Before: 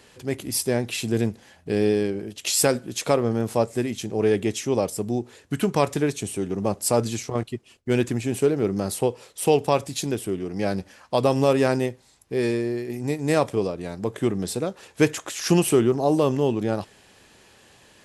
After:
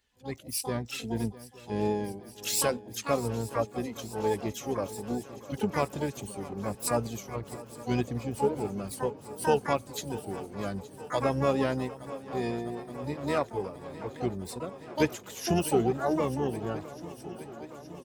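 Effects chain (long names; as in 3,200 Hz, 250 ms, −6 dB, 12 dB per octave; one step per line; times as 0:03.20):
spectral dynamics exaggerated over time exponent 1.5
feedback echo with a long and a short gap by turns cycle 869 ms, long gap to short 3 to 1, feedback 73%, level −18 dB
pitch-shifted copies added −12 semitones −13 dB, +3 semitones −17 dB, +12 semitones −7 dB
level −5.5 dB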